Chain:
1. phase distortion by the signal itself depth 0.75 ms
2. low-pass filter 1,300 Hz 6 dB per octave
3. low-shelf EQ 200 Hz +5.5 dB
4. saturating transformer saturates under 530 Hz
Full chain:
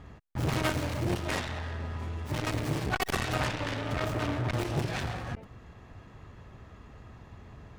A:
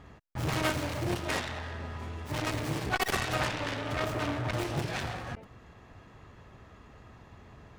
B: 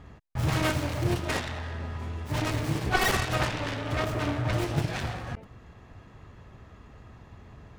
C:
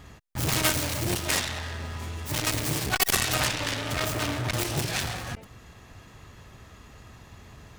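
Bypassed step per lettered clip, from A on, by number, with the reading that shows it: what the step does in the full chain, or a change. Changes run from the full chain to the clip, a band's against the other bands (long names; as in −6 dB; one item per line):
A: 3, 125 Hz band −4.0 dB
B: 4, change in momentary loudness spread −10 LU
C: 2, 8 kHz band +13.5 dB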